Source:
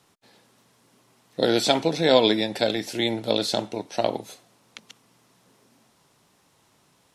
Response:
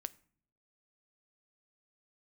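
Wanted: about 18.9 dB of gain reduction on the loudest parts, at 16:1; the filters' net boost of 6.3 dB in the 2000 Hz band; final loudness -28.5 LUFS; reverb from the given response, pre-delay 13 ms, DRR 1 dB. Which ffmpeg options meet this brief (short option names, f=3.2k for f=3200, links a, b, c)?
-filter_complex "[0:a]equalizer=f=2k:t=o:g=7.5,acompressor=threshold=-30dB:ratio=16,asplit=2[a][b];[1:a]atrim=start_sample=2205,adelay=13[c];[b][c]afir=irnorm=-1:irlink=0,volume=2dB[d];[a][d]amix=inputs=2:normalize=0,volume=5.5dB"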